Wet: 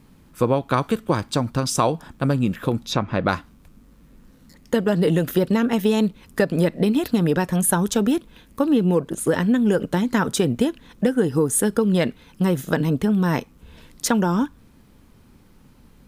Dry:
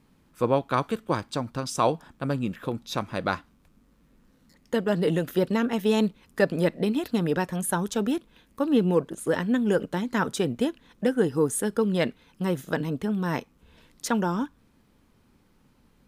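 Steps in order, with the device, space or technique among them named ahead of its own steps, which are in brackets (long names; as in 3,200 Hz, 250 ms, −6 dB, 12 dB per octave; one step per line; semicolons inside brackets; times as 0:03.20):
0:02.86–0:03.29: treble cut that deepens with the level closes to 2,500 Hz, closed at −26.5 dBFS
ASMR close-microphone chain (low-shelf EQ 200 Hz +5.5 dB; downward compressor 5 to 1, threshold −22 dBFS, peak gain reduction 8 dB; high-shelf EQ 7,800 Hz +4.5 dB)
level +7 dB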